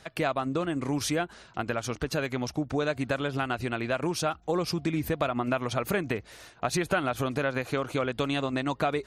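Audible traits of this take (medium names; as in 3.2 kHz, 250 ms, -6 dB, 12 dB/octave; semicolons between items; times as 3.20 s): noise floor -55 dBFS; spectral tilt -5.0 dB/octave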